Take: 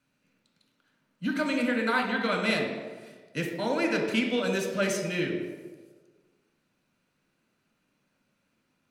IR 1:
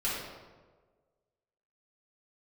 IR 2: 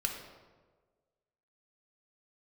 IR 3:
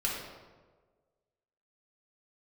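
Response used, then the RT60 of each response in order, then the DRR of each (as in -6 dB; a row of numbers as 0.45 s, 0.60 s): 2; 1.5 s, 1.5 s, 1.5 s; -9.0 dB, 1.5 dB, -4.5 dB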